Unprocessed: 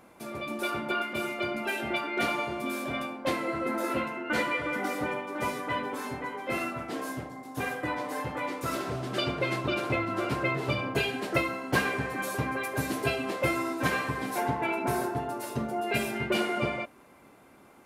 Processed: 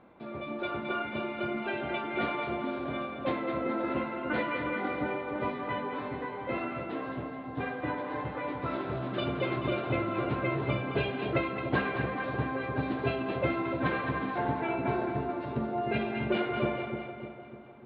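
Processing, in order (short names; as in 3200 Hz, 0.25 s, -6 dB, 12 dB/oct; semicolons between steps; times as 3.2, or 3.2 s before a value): elliptic low-pass 3800 Hz, stop band 50 dB; tilt shelf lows +4 dB, about 1300 Hz; split-band echo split 860 Hz, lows 0.3 s, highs 0.215 s, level -7 dB; gain -3.5 dB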